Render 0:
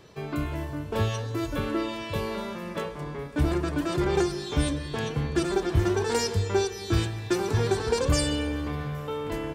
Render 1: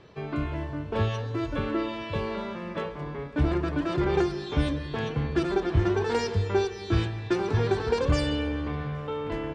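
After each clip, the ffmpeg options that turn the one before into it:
ffmpeg -i in.wav -af "lowpass=3600" out.wav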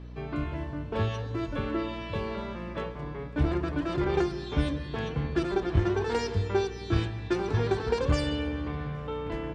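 ffmpeg -i in.wav -af "aeval=exprs='0.299*(cos(1*acos(clip(val(0)/0.299,-1,1)))-cos(1*PI/2))+0.0266*(cos(3*acos(clip(val(0)/0.299,-1,1)))-cos(3*PI/2))':channel_layout=same,aeval=exprs='val(0)+0.00891*(sin(2*PI*60*n/s)+sin(2*PI*2*60*n/s)/2+sin(2*PI*3*60*n/s)/3+sin(2*PI*4*60*n/s)/4+sin(2*PI*5*60*n/s)/5)':channel_layout=same" out.wav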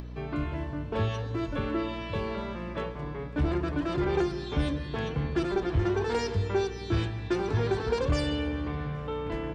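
ffmpeg -i in.wav -af "acompressor=mode=upward:threshold=-37dB:ratio=2.5,asoftclip=type=tanh:threshold=-18.5dB,volume=1dB" out.wav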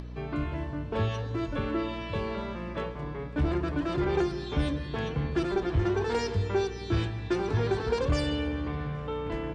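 ffmpeg -i in.wav -ar 24000 -c:a aac -b:a 96k out.aac

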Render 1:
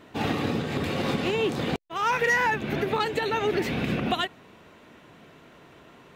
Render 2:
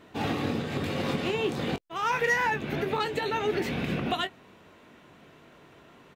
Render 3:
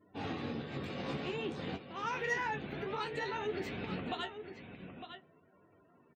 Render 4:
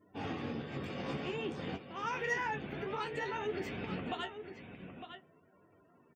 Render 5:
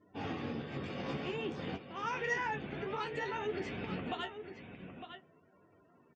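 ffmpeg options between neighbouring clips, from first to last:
ffmpeg -i in.wav -filter_complex "[0:a]asplit=2[link_01][link_02];[link_02]adelay=21,volume=-10dB[link_03];[link_01][link_03]amix=inputs=2:normalize=0,volume=-3dB" out.wav
ffmpeg -i in.wav -af "flanger=delay=9.5:depth=6.6:regen=45:speed=0.53:shape=triangular,aecho=1:1:906:0.335,afftdn=noise_reduction=27:noise_floor=-56,volume=-6dB" out.wav
ffmpeg -i in.wav -af "bandreject=frequency=4000:width=5.9" out.wav
ffmpeg -i in.wav -af "lowpass=frequency=7100:width=0.5412,lowpass=frequency=7100:width=1.3066" out.wav

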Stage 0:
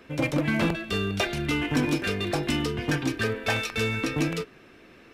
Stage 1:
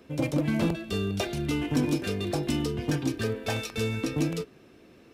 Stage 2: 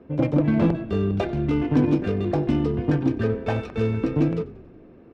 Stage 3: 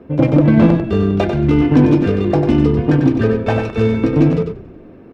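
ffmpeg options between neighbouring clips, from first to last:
ffmpeg -i in.wav -af "highpass=45,equalizer=frequency=1800:width=0.66:gain=-9.5" out.wav
ffmpeg -i in.wav -filter_complex "[0:a]asplit=7[link_01][link_02][link_03][link_04][link_05][link_06][link_07];[link_02]adelay=93,afreqshift=-31,volume=-18dB[link_08];[link_03]adelay=186,afreqshift=-62,volume=-22.3dB[link_09];[link_04]adelay=279,afreqshift=-93,volume=-26.6dB[link_10];[link_05]adelay=372,afreqshift=-124,volume=-30.9dB[link_11];[link_06]adelay=465,afreqshift=-155,volume=-35.2dB[link_12];[link_07]adelay=558,afreqshift=-186,volume=-39.5dB[link_13];[link_01][link_08][link_09][link_10][link_11][link_12][link_13]amix=inputs=7:normalize=0,adynamicsmooth=sensitivity=1:basefreq=1200,volume=6.5dB" out.wav
ffmpeg -i in.wav -af "aecho=1:1:95:0.447,volume=8dB" out.wav

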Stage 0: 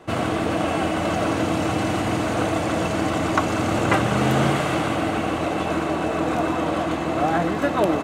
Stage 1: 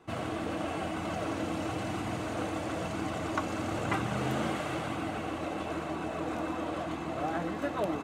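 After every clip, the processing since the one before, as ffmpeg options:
ffmpeg -i in.wav -af "flanger=delay=0.8:depth=3:regen=-62:speed=1:shape=sinusoidal,volume=-7.5dB" out.wav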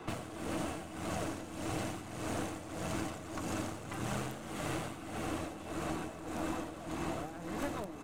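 ffmpeg -i in.wav -filter_complex "[0:a]acrossover=split=320|6000[link_01][link_02][link_03];[link_01]acompressor=threshold=-48dB:ratio=4[link_04];[link_02]acompressor=threshold=-49dB:ratio=4[link_05];[link_03]acompressor=threshold=-57dB:ratio=4[link_06];[link_04][link_05][link_06]amix=inputs=3:normalize=0,aeval=exprs='clip(val(0),-1,0.00376)':channel_layout=same,tremolo=f=1.7:d=0.7,volume=11dB" out.wav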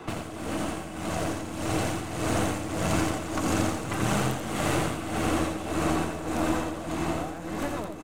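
ffmpeg -i in.wav -filter_complex "[0:a]dynaudnorm=framelen=370:gausssize=9:maxgain=5dB,asplit=2[link_01][link_02];[link_02]aecho=0:1:85:0.501[link_03];[link_01][link_03]amix=inputs=2:normalize=0,volume=5.5dB" out.wav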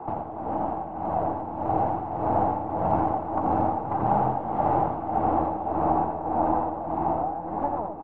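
ffmpeg -i in.wav -af "lowpass=frequency=840:width_type=q:width=7.5,volume=-2.5dB" out.wav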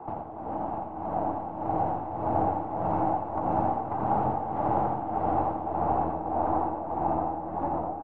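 ffmpeg -i in.wav -af "aecho=1:1:655:0.708,volume=-4.5dB" out.wav

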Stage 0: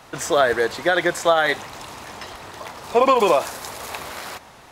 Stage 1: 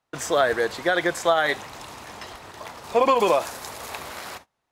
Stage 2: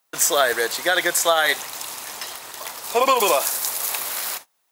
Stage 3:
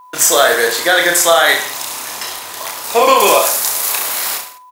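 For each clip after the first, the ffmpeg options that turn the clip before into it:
ffmpeg -i in.wav -af "agate=range=-29dB:threshold=-38dB:ratio=16:detection=peak,volume=-3dB" out.wav
ffmpeg -i in.wav -af "aemphasis=mode=production:type=riaa,volume=2dB" out.wav
ffmpeg -i in.wav -af "aecho=1:1:30|64.5|104.2|149.8|202.3:0.631|0.398|0.251|0.158|0.1,aeval=exprs='val(0)+0.00631*sin(2*PI*1000*n/s)':channel_layout=same,apsyclip=7.5dB,volume=-1.5dB" out.wav

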